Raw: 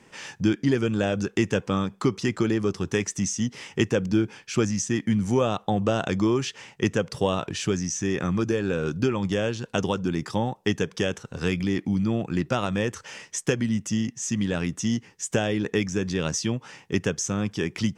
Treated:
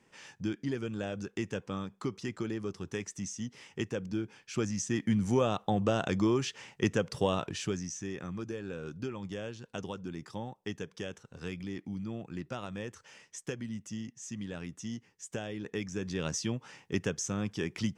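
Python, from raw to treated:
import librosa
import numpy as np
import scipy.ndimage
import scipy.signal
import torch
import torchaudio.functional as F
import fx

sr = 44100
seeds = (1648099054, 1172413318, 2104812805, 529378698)

y = fx.gain(x, sr, db=fx.line((4.23, -12.0), (5.08, -5.0), (7.38, -5.0), (8.21, -14.0), (15.53, -14.0), (16.28, -7.0)))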